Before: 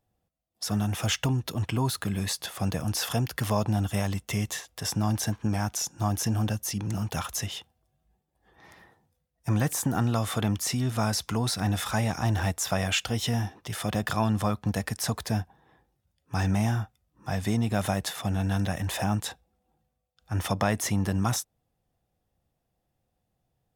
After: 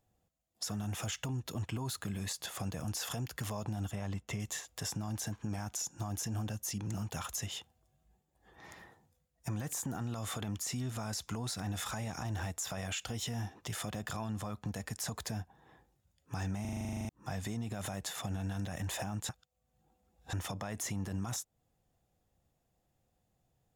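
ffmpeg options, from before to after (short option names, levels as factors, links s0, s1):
-filter_complex "[0:a]asettb=1/sr,asplit=3[s0][s1][s2];[s0]atrim=end=3.914[s3];[s1]atrim=start=3.91:end=4.4,asetpts=PTS-STARTPTS,afade=t=in:d=0.004:c=qsin,afade=t=out:st=0.486:d=0.004:c=qsin,lowpass=f=2500:p=1[s4];[s2]atrim=start=4.396[s5];[s3][s4]acrossfade=d=0.004:c1=hsin:c2=qsin[s6];[s6][s5]acrossfade=d=0.004:c1=qsin:c2=hsin,asplit=15[s7][s8][s9][s10][s11][s12][s13][s14][s15][s16][s17][s18][s19][s20][s21];[s7]atrim=end=16.652[s22];[s8]atrim=start=16.608:end=16.652[s23];[s9]atrim=start=16.608:end=16.652[s24];[s10]atrim=start=16.608:end=16.652[s25];[s11]atrim=start=16.608:end=16.652[s26];[s12]atrim=start=16.608:end=16.652[s27];[s13]atrim=start=16.608:end=16.652[s28];[s14]atrim=start=16.608:end=16.652[s29];[s15]atrim=start=16.608:end=16.652[s30];[s16]atrim=start=16.608:end=16.652[s31];[s17]atrim=start=16.608:end=16.652[s32];[s18]atrim=start=16.608:end=16.652[s33];[s19]atrim=start=17.088:end=19.292[s34];[s20]atrim=start=19.288:end=20.332,asetpts=PTS-STARTPTS,areverse[s35];[s21]atrim=start=20.328[s36];[s22][s23]acrossfade=d=0.004:c1=hsin:c2=hsin[s37];[s37][s24]acrossfade=d=0.004:c1=hsin:c2=hsin[s38];[s38][s25]acrossfade=d=0.004:c1=hsin:c2=hsin[s39];[s39][s26]acrossfade=d=0.004:c1=hsin:c2=hsin[s40];[s40][s27]acrossfade=d=0.004:c1=hsin:c2=hsin[s41];[s41][s28]acrossfade=d=0.004:c1=hsin:c2=hsin[s42];[s42][s29]acrossfade=d=0.004:c1=hsin:c2=hsin[s43];[s43][s30]acrossfade=d=0.004:c1=hsin:c2=hsin[s44];[s44][s31]acrossfade=d=0.004:c1=hsin:c2=hsin[s45];[s45][s32]acrossfade=d=0.004:c1=hsin:c2=hsin[s46];[s46][s33]acrossfade=d=0.004:c1=hsin:c2=hsin[s47];[s47][s34]acrossfade=d=0.004:c1=hsin:c2=hsin[s48];[s48][s35]acrossfade=d=0.004:c1=hsin:c2=hsin[s49];[s49][s36]acrossfade=d=0.004:c1=hsin:c2=hsin,equalizer=f=7000:w=6.8:g=8.5,alimiter=limit=0.0944:level=0:latency=1:release=38,acompressor=threshold=0.00891:ratio=2"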